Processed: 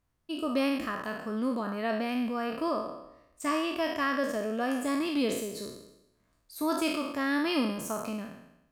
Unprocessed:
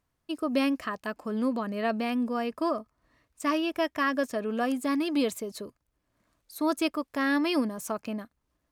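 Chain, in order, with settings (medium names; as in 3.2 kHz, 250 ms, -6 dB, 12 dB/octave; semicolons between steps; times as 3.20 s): spectral sustain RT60 0.86 s; bass shelf 120 Hz +6.5 dB; trim -4 dB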